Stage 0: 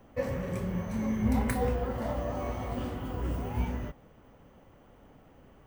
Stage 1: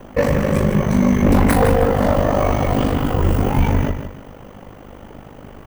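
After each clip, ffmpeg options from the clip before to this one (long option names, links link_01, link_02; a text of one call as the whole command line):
ffmpeg -i in.wav -af "aecho=1:1:158|316|474:0.335|0.104|0.0322,aeval=exprs='val(0)*sin(2*PI*25*n/s)':channel_layout=same,aeval=exprs='0.158*sin(PI/2*2.51*val(0)/0.158)':channel_layout=same,volume=8.5dB" out.wav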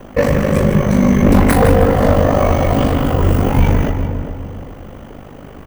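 ffmpeg -i in.wav -filter_complex "[0:a]equalizer=frequency=890:width=7.9:gain=-3.5,asplit=2[link_01][link_02];[link_02]adelay=405,lowpass=frequency=940:poles=1,volume=-8dB,asplit=2[link_03][link_04];[link_04]adelay=405,lowpass=frequency=940:poles=1,volume=0.35,asplit=2[link_05][link_06];[link_06]adelay=405,lowpass=frequency=940:poles=1,volume=0.35,asplit=2[link_07][link_08];[link_08]adelay=405,lowpass=frequency=940:poles=1,volume=0.35[link_09];[link_03][link_05][link_07][link_09]amix=inputs=4:normalize=0[link_10];[link_01][link_10]amix=inputs=2:normalize=0,volume=3dB" out.wav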